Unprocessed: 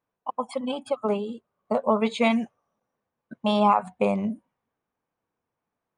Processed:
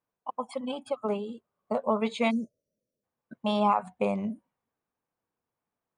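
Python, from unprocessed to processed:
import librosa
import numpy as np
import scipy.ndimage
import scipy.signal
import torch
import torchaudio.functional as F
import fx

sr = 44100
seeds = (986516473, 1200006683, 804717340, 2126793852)

y = fx.spec_erase(x, sr, start_s=2.31, length_s=0.73, low_hz=650.0, high_hz=4100.0)
y = y * 10.0 ** (-4.5 / 20.0)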